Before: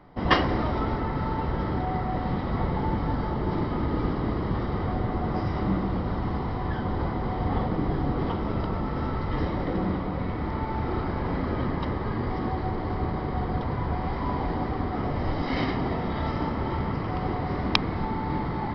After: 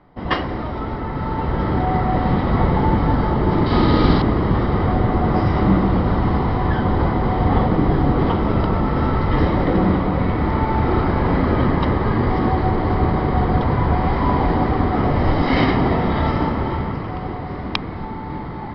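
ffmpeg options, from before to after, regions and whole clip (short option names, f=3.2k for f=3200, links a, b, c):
-filter_complex "[0:a]asettb=1/sr,asplit=3[a][b][c];[a]atrim=end=3.664[d];[b]atrim=start=3.66:end=4.22,asetpts=PTS-STARTPTS,afade=t=in:d=0.004:c=qsin,afade=t=out:st=0.556:d=0.004:c=qsin,equalizer=f=4.3k:t=o:w=1.1:g=13.5,asplit=2[e][f];[f]adelay=49,volume=-2dB[g];[e][g]amix=inputs=2:normalize=0,atrim=end_sample=24696[h];[c]atrim=start=4.216[i];[d][h]acrossfade=d=0.004:c1=hsin:c2=qsin[j];[j][i]acrossfade=d=0.004:c1=qsin:c2=hsin,dynaudnorm=f=180:g=13:m=11dB,lowpass=4.6k"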